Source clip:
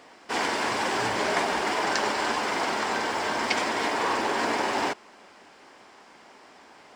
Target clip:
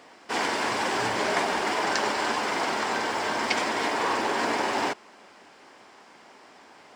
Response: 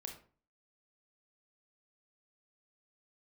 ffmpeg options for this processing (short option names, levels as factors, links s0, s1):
-af "highpass=66"